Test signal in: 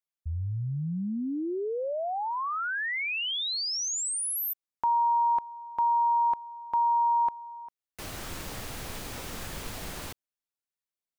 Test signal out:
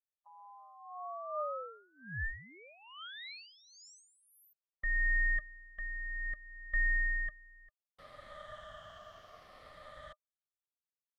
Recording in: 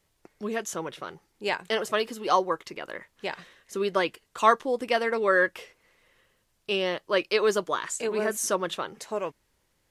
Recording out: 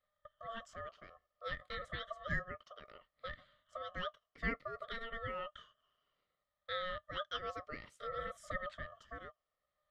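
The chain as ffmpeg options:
-filter_complex "[0:a]afftfilt=real='re*pow(10,11/40*sin(2*PI*(0.65*log(max(b,1)*sr/1024/100)/log(2)-(-0.61)*(pts-256)/sr)))':imag='im*pow(10,11/40*sin(2*PI*(0.65*log(max(b,1)*sr/1024/100)/log(2)-(-0.61)*(pts-256)/sr)))':win_size=1024:overlap=0.75,asplit=3[a][b][c];[a]bandpass=f=300:t=q:w=8,volume=0dB[d];[b]bandpass=f=870:t=q:w=8,volume=-6dB[e];[c]bandpass=f=2.24k:t=q:w=8,volume=-9dB[f];[d][e][f]amix=inputs=3:normalize=0,aeval=exprs='val(0)*sin(2*PI*910*n/s)':c=same,volume=2.5dB"

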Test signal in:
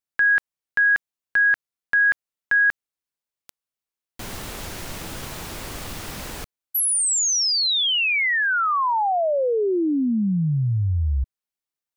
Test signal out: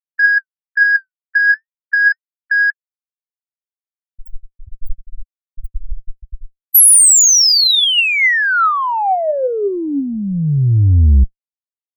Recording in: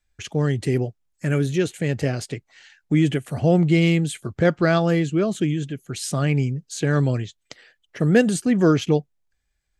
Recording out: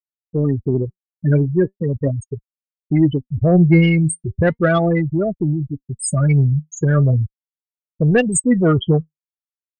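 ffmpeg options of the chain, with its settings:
-af "aemphasis=mode=production:type=50fm,afftfilt=real='re*gte(hypot(re,im),0.224)':imag='im*gte(hypot(re,im),0.224)':win_size=1024:overlap=0.75,asubboost=boost=7.5:cutoff=82,acontrast=89,flanger=delay=1.3:depth=5.6:regen=68:speed=0.38:shape=triangular,volume=3dB"

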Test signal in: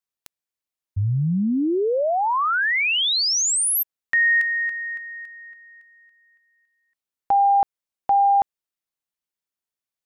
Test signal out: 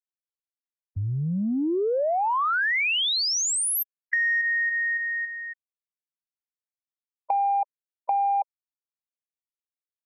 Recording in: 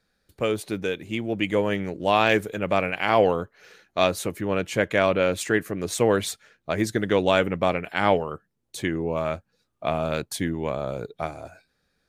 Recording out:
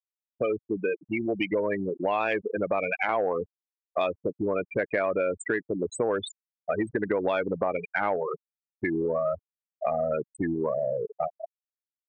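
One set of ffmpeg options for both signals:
-af "afftfilt=real='re*gte(hypot(re,im),0.112)':imag='im*gte(hypot(re,im),0.112)':win_size=1024:overlap=0.75,acontrast=44,bass=f=250:g=-13,treble=f=4k:g=-8,acompressor=threshold=-28dB:ratio=5:attack=10:release=93:knee=6:detection=rms,volume=3.5dB"

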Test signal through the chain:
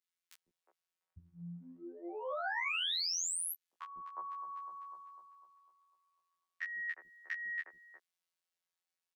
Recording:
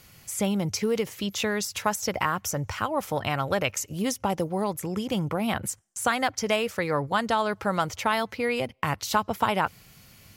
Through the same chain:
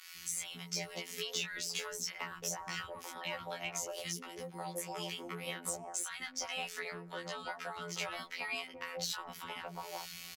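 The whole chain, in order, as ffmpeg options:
-filter_complex "[0:a]equalizer=f=380:w=1.7:g=4.5,acompressor=threshold=-36dB:ratio=4,afftfilt=real='hypot(re,im)*cos(PI*b)':imag='0':win_size=2048:overlap=0.75,asplit=2[a][b];[b]highpass=f=720:p=1,volume=12dB,asoftclip=type=tanh:threshold=-17dB[c];[a][c]amix=inputs=2:normalize=0,lowpass=f=5.1k:p=1,volume=-6dB,acrossover=split=200|400[d][e][f];[d]acompressor=threshold=-53dB:ratio=4[g];[e]acompressor=threshold=-58dB:ratio=4[h];[f]acompressor=threshold=-40dB:ratio=4[i];[g][h][i]amix=inputs=3:normalize=0,asplit=2[j][k];[k]adelay=17,volume=-3dB[l];[j][l]amix=inputs=2:normalize=0,acrossover=split=320|1100[m][n][o];[m]adelay=150[p];[n]adelay=360[q];[p][q][o]amix=inputs=3:normalize=0,adynamicequalizer=threshold=0.00178:dfrequency=2100:dqfactor=0.7:tfrequency=2100:tqfactor=0.7:attack=5:release=100:ratio=0.375:range=3:mode=boostabove:tftype=highshelf"

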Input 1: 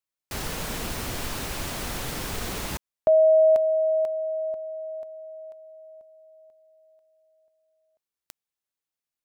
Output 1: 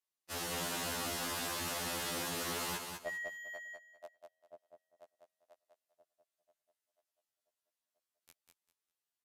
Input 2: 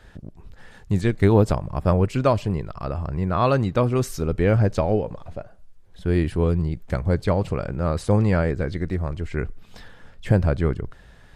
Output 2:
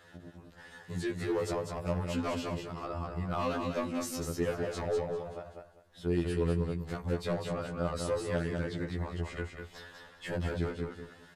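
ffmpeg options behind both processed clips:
-af "highpass=f=330:p=1,bandreject=f=2.3k:w=13,acompressor=threshold=-37dB:ratio=1.5:attack=1.7:release=34:detection=rms,asoftclip=type=hard:threshold=-25dB,aecho=1:1:199|398|597:0.562|0.129|0.0297,aresample=32000,aresample=44100,afftfilt=real='re*2*eq(mod(b,4),0)':imag='im*2*eq(mod(b,4),0)':win_size=2048:overlap=0.75"

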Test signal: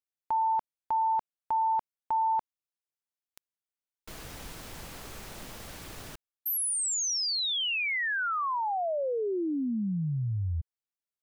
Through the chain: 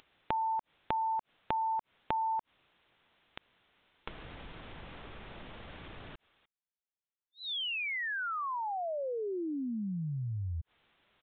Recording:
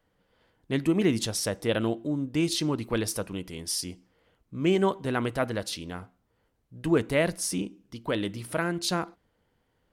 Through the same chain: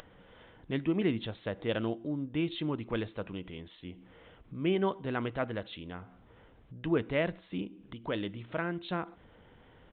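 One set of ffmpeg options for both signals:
-af "acompressor=mode=upward:threshold=-43dB:ratio=2.5:attack=74:release=38:knee=2.83:detection=peak,aresample=8000,aresample=44100,volume=-5.5dB"

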